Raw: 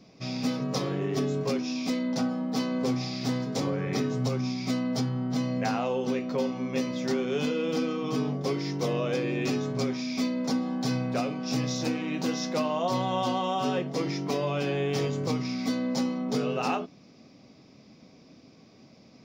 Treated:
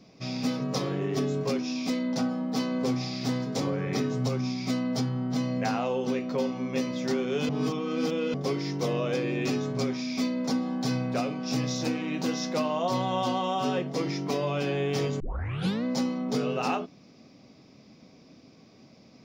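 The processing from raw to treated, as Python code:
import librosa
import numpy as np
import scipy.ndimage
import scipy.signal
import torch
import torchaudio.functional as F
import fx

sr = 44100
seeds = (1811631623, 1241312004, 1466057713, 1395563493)

y = fx.edit(x, sr, fx.reverse_span(start_s=7.49, length_s=0.85),
    fx.tape_start(start_s=15.2, length_s=0.64), tone=tone)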